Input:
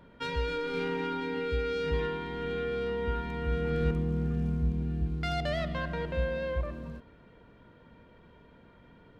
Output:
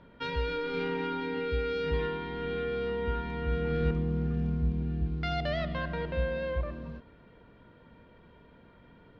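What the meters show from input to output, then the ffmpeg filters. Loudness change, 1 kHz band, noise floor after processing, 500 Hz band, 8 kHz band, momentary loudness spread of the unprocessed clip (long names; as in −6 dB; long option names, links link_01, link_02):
0.0 dB, 0.0 dB, −57 dBFS, 0.0 dB, can't be measured, 5 LU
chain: -af "lowpass=frequency=5000:width=0.5412,lowpass=frequency=5000:width=1.3066"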